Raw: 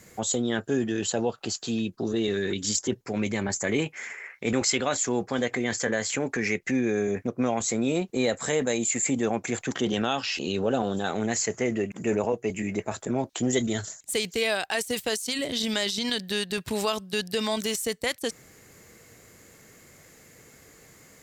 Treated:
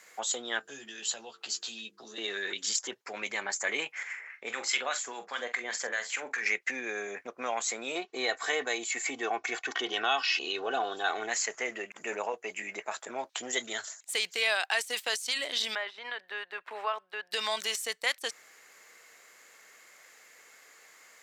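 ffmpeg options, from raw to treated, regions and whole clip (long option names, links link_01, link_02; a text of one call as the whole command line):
ffmpeg -i in.wav -filter_complex "[0:a]asettb=1/sr,asplit=3[link_01][link_02][link_03];[link_01]atrim=end=0.594[link_04];[link_02]atrim=start=0.59:end=2.18,asetpts=PTS-STARTPTS,afade=type=in:duration=0.004:curve=qsin,afade=type=out:start_time=1.586:duration=0.004:curve=qsin,bandreject=frequency=50:width_type=h:width=6,bandreject=frequency=100:width_type=h:width=6,bandreject=frequency=150:width_type=h:width=6,bandreject=frequency=200:width_type=h:width=6,bandreject=frequency=250:width_type=h:width=6,bandreject=frequency=300:width_type=h:width=6,bandreject=frequency=350:width_type=h:width=6,bandreject=frequency=400:width_type=h:width=6,bandreject=frequency=450:width_type=h:width=6,acrossover=split=200|3000[link_05][link_06][link_07];[link_06]acompressor=threshold=-48dB:ratio=2:attack=3.2:release=140:knee=2.83:detection=peak[link_08];[link_05][link_08][link_07]amix=inputs=3:normalize=0,asplit=2[link_09][link_10];[link_10]adelay=14,volume=-6dB[link_11];[link_09][link_11]amix=inputs=2:normalize=0,atrim=end_sample=70119[link_12];[link_03]atrim=start=2.176[link_13];[link_04][link_12]acrossfade=duration=0.004:curve1=hsin:curve2=qsin[link_14];[link_14][link_13]acrossfade=duration=0.004:curve1=qsin:curve2=hsin,asettb=1/sr,asplit=3[link_15][link_16][link_17];[link_15]atrim=end=4.034[link_18];[link_16]atrim=start=4.03:end=6.46,asetpts=PTS-STARTPTS,afade=type=in:duration=0.004:curve=qsin,afade=type=out:start_time=2.426:duration=0.004:curve=qsin,acrossover=split=1000[link_19][link_20];[link_19]aeval=exprs='val(0)*(1-0.7/2+0.7/2*cos(2*PI*4.9*n/s))':channel_layout=same[link_21];[link_20]aeval=exprs='val(0)*(1-0.7/2-0.7/2*cos(2*PI*4.9*n/s))':channel_layout=same[link_22];[link_21][link_22]amix=inputs=2:normalize=0,asplit=2[link_23][link_24];[link_24]adelay=44,volume=-10.5dB[link_25];[link_23][link_25]amix=inputs=2:normalize=0,atrim=end_sample=107163[link_26];[link_17]atrim=start=6.456[link_27];[link_18][link_26]acrossfade=duration=0.004:curve1=hsin:curve2=qsin[link_28];[link_28][link_27]acrossfade=duration=0.004:curve1=qsin:curve2=hsin,asettb=1/sr,asplit=3[link_29][link_30][link_31];[link_29]atrim=end=7.954[link_32];[link_30]atrim=start=7.95:end=11.29,asetpts=PTS-STARTPTS,afade=type=in:duration=0.004:curve=qsin,afade=type=out:start_time=3.336:duration=0.004:curve=qsin,lowpass=frequency=6200:width=0.5412,lowpass=frequency=6200:width=1.3066,lowshelf=frequency=200:gain=6,aecho=1:1:2.7:0.63,atrim=end_sample=147294[link_33];[link_31]atrim=start=11.286[link_34];[link_32][link_33]acrossfade=duration=0.004:curve1=hsin:curve2=qsin[link_35];[link_35][link_34]acrossfade=duration=0.004:curve1=qsin:curve2=hsin,asettb=1/sr,asplit=3[link_36][link_37][link_38];[link_36]atrim=end=15.754[link_39];[link_37]atrim=start=15.75:end=17.32,asetpts=PTS-STARTPTS,afade=type=in:duration=0.004:curve=qsin,afade=type=out:start_time=1.566:duration=0.004:curve=qsin,highpass=180,acrossover=split=3200[link_40][link_41];[link_41]acompressor=threshold=-39dB:ratio=4:attack=1:release=60[link_42];[link_40][link_42]amix=inputs=2:normalize=0,acrossover=split=360 2300:gain=0.178 1 0.0891[link_43][link_44][link_45];[link_43][link_44][link_45]amix=inputs=3:normalize=0[link_46];[link_38]atrim=start=17.316[link_47];[link_39][link_46]acrossfade=duration=0.004:curve1=hsin:curve2=qsin[link_48];[link_48][link_47]acrossfade=duration=0.004:curve1=qsin:curve2=hsin,highpass=960,highshelf=frequency=6200:gain=-11,volume=2.5dB" out.wav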